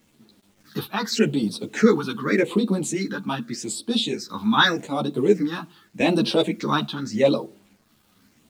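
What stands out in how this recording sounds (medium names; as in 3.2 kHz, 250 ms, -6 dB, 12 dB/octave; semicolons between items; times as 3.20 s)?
phasing stages 6, 0.84 Hz, lowest notch 520–2000 Hz; a quantiser's noise floor 10-bit, dither none; random-step tremolo; a shimmering, thickened sound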